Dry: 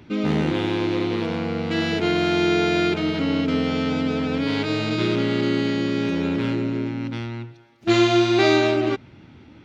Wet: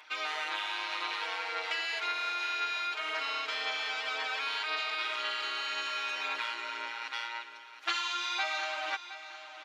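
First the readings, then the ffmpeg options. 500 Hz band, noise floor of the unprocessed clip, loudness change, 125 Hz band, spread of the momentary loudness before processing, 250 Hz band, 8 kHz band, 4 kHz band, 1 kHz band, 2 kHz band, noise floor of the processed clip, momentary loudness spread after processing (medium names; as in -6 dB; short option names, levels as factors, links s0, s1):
-23.0 dB, -48 dBFS, -11.0 dB, under -40 dB, 10 LU, -38.0 dB, no reading, -5.0 dB, -6.0 dB, -4.0 dB, -49 dBFS, 6 LU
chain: -filter_complex "[0:a]highpass=f=870:w=0.5412,highpass=f=870:w=1.3066,aecho=1:1:6.5:0.87,acompressor=threshold=0.0282:ratio=10,aphaser=in_gain=1:out_gain=1:delay=2.8:decay=0.31:speed=1.9:type=sinusoidal,asplit=2[s0][s1];[s1]aecho=0:1:715|1430|2145:0.224|0.0784|0.0274[s2];[s0][s2]amix=inputs=2:normalize=0,aresample=32000,aresample=44100"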